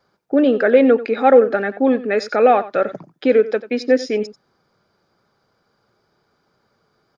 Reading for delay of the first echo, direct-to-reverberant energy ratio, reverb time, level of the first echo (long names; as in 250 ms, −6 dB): 90 ms, no reverb audible, no reverb audible, −16.0 dB